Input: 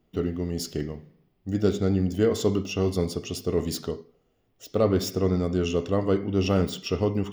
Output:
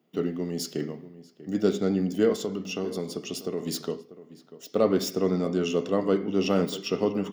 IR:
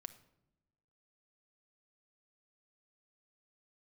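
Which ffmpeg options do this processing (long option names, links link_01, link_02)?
-filter_complex "[0:a]highpass=frequency=160:width=0.5412,highpass=frequency=160:width=1.3066,asplit=3[link_01][link_02][link_03];[link_01]afade=type=out:start_time=2.35:duration=0.02[link_04];[link_02]acompressor=threshold=-27dB:ratio=6,afade=type=in:start_time=2.35:duration=0.02,afade=type=out:start_time=3.65:duration=0.02[link_05];[link_03]afade=type=in:start_time=3.65:duration=0.02[link_06];[link_04][link_05][link_06]amix=inputs=3:normalize=0,asplit=2[link_07][link_08];[link_08]adelay=641.4,volume=-16dB,highshelf=frequency=4000:gain=-14.4[link_09];[link_07][link_09]amix=inputs=2:normalize=0"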